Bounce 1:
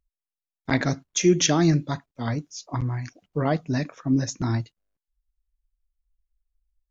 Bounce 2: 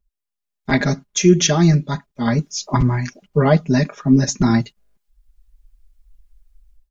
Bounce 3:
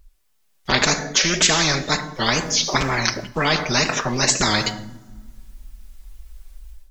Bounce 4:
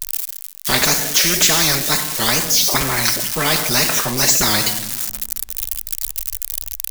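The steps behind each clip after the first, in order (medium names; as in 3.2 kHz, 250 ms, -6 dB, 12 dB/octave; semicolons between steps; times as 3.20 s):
bass shelf 190 Hz +5 dB; comb 4.9 ms, depth 95%; level rider gain up to 15 dB; trim -1 dB
wow and flutter 140 cents; two-slope reverb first 0.55 s, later 2 s, from -28 dB, DRR 15 dB; spectrum-flattening compressor 4:1
zero-crossing glitches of -10.5 dBFS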